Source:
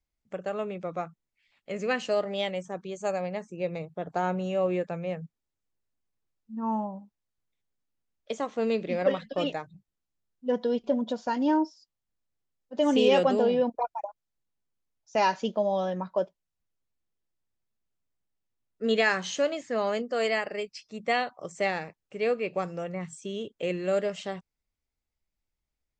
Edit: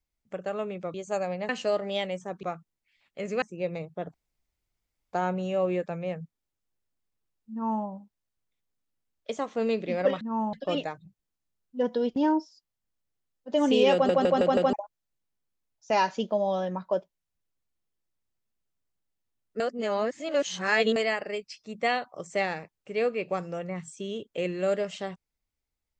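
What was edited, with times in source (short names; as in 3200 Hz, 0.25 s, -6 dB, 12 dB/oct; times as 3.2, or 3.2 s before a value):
0.94–1.93 swap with 2.87–3.42
4.14 insert room tone 0.99 s
6.53–6.85 copy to 9.22
10.85–11.41 cut
13.18 stutter in place 0.16 s, 5 plays
18.85–20.21 reverse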